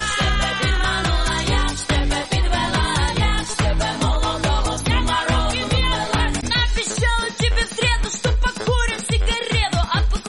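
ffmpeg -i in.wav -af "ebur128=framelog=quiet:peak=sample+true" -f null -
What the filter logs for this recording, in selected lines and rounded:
Integrated loudness:
  I:         -20.0 LUFS
  Threshold: -30.0 LUFS
Loudness range:
  LRA:         0.5 LU
  Threshold: -40.0 LUFS
  LRA low:   -20.3 LUFS
  LRA high:  -19.8 LUFS
Sample peak:
  Peak:       -8.4 dBFS
True peak:
  Peak:       -8.1 dBFS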